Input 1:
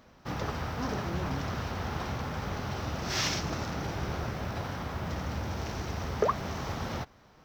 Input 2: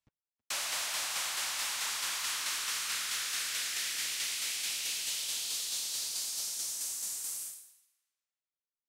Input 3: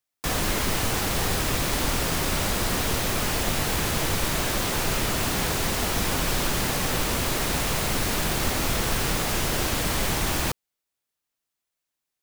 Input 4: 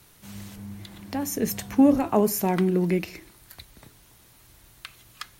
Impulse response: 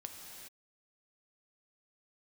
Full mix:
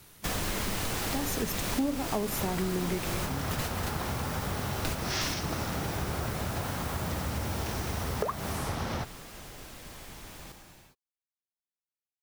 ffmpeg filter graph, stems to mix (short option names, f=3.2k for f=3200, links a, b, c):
-filter_complex "[0:a]adelay=2000,volume=3dB[a];[1:a]aeval=exprs='0.0668*sin(PI/2*10*val(0)/0.0668)':c=same,adelay=1050,volume=-16dB[b];[2:a]volume=-4dB,asplit=2[c][d];[d]volume=-15dB[e];[3:a]volume=0.5dB,asplit=2[f][g];[g]apad=whole_len=539285[h];[c][h]sidechaingate=range=-33dB:threshold=-46dB:ratio=16:detection=peak[i];[4:a]atrim=start_sample=2205[j];[e][j]afir=irnorm=-1:irlink=0[k];[a][b][i][f][k]amix=inputs=5:normalize=0,acompressor=threshold=-28dB:ratio=5"